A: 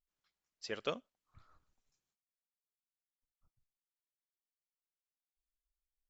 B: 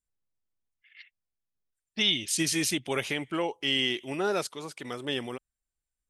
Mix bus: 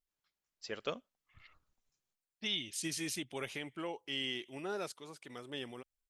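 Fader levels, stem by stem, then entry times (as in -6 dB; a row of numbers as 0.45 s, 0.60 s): -1.0 dB, -11.0 dB; 0.00 s, 0.45 s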